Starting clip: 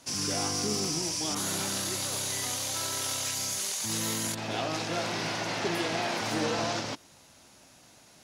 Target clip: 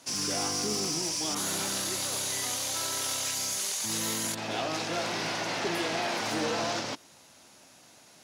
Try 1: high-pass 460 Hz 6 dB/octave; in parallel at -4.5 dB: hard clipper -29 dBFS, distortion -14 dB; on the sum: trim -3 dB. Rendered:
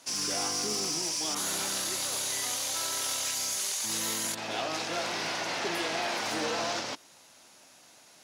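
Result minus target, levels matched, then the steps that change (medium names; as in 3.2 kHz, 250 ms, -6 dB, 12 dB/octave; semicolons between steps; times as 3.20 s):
250 Hz band -3.5 dB
change: high-pass 180 Hz 6 dB/octave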